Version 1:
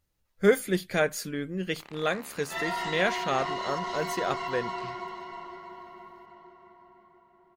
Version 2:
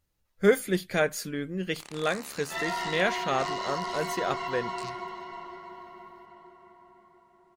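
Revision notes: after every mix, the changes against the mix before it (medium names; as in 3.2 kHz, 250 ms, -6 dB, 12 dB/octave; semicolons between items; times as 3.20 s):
first sound: remove low-pass 2.8 kHz 12 dB/octave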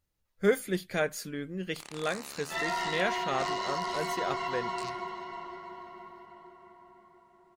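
speech -4.0 dB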